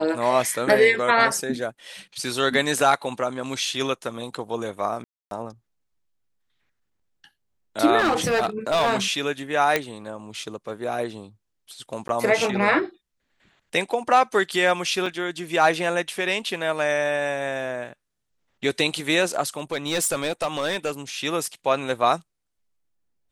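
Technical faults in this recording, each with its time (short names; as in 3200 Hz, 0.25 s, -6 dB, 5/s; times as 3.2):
5.04–5.31 gap 0.272 s
7.98–8.96 clipped -16.5 dBFS
9.76 pop -6 dBFS
12.08–12.09 gap
15.06 gap 3.8 ms
19.57–20.91 clipped -19.5 dBFS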